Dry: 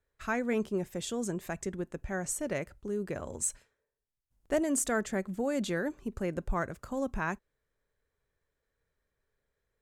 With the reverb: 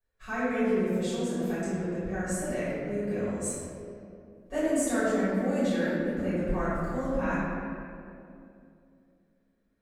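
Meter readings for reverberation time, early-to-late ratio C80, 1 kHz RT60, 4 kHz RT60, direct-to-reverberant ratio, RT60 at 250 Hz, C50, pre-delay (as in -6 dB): 2.5 s, -2.0 dB, 2.2 s, 1.4 s, -15.0 dB, 3.4 s, -5.0 dB, 4 ms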